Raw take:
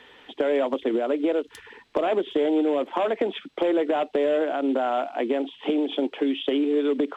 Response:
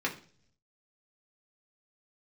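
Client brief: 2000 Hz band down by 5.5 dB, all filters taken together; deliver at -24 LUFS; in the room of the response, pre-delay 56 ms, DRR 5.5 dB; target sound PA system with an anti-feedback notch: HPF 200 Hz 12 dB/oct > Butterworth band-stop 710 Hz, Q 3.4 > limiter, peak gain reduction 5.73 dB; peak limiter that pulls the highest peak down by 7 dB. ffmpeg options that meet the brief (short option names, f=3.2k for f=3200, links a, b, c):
-filter_complex "[0:a]equalizer=f=2k:t=o:g=-7.5,alimiter=limit=-20.5dB:level=0:latency=1,asplit=2[a][b];[1:a]atrim=start_sample=2205,adelay=56[c];[b][c]afir=irnorm=-1:irlink=0,volume=-13dB[d];[a][d]amix=inputs=2:normalize=0,highpass=200,asuperstop=centerf=710:order=8:qfactor=3.4,volume=7.5dB,alimiter=limit=-15dB:level=0:latency=1"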